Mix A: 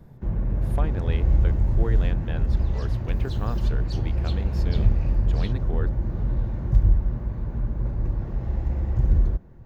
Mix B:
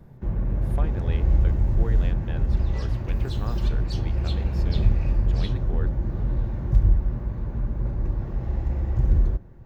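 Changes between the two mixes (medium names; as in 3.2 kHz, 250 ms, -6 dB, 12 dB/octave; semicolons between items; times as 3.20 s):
speech -3.5 dB; reverb: on, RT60 0.35 s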